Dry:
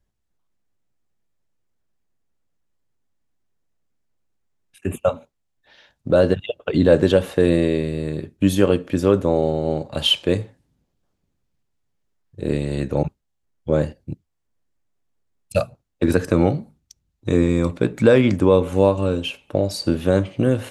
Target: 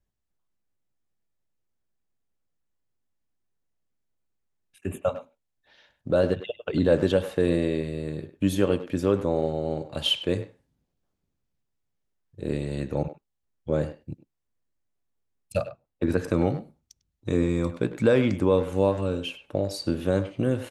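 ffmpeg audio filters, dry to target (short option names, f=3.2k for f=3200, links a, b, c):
-filter_complex "[0:a]asettb=1/sr,asplit=3[a][b][c];[a]atrim=end=15.574[d];[b]atrim=start=15.57:end=16.18,asetpts=PTS-STARTPTS,afade=t=in:d=0.004:c=qsin,afade=t=out:st=0.606:d=0.004:c=qsin,highshelf=f=4.1k:g=-10[e];[c]atrim=start=16.176[f];[d][e]acrossfade=d=0.004:c1=hsin:c2=qsin[g];[g][f]acrossfade=d=0.004:c1=qsin:c2=hsin,asplit=2[h][i];[i]adelay=100,highpass=300,lowpass=3.4k,asoftclip=type=hard:threshold=-10.5dB,volume=-12dB[j];[h][j]amix=inputs=2:normalize=0,volume=-6.5dB"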